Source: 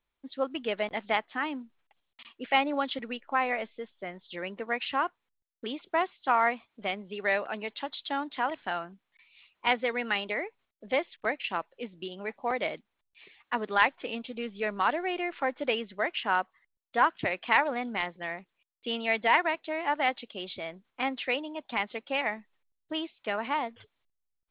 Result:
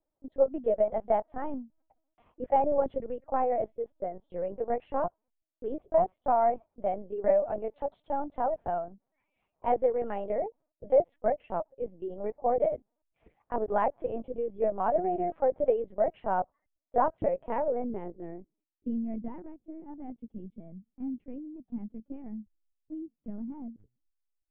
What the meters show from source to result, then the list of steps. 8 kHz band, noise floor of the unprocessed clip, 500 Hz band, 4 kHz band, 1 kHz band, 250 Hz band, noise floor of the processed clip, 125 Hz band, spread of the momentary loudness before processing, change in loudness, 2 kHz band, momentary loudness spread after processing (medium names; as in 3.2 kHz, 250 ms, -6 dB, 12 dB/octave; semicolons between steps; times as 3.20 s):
no reading, -82 dBFS, +5.5 dB, under -30 dB, -1.5 dB, 0.0 dB, -84 dBFS, +3.5 dB, 14 LU, 0.0 dB, -20.0 dB, 17 LU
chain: low-pass sweep 620 Hz -> 210 Hz, 17.15–19.47 s; hum notches 60/120 Hz; LPC vocoder at 8 kHz pitch kept